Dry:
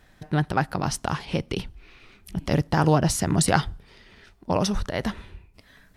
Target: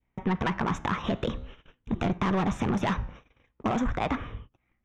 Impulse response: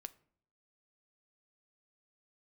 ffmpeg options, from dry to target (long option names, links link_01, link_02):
-filter_complex "[0:a]aeval=exprs='val(0)+0.00112*(sin(2*PI*50*n/s)+sin(2*PI*2*50*n/s)/2+sin(2*PI*3*50*n/s)/3+sin(2*PI*4*50*n/s)/4+sin(2*PI*5*50*n/s)/5)':channel_layout=same,acrossover=split=590|1200[link_01][link_02][link_03];[link_02]aeval=exprs='(mod(21.1*val(0)+1,2)-1)/21.1':channel_layout=same[link_04];[link_01][link_04][link_03]amix=inputs=3:normalize=0,asuperstop=centerf=3700:order=8:qfactor=2.7,equalizer=frequency=880:width_type=o:width=0.57:gain=2.5,asetrate=54243,aresample=44100,adynamicequalizer=threshold=0.00794:dfrequency=1200:dqfactor=1.3:tfrequency=1200:tqfactor=1.3:attack=5:release=100:ratio=0.375:range=2.5:mode=boostabove:tftype=bell,asoftclip=type=tanh:threshold=-20.5dB,lowpass=6200,acompressor=threshold=-28dB:ratio=6,flanger=delay=8.2:depth=8.8:regen=-86:speed=0.47:shape=triangular,adynamicsmooth=sensitivity=2.5:basefreq=3500,agate=range=-26dB:threshold=-52dB:ratio=16:detection=peak,volume=9dB"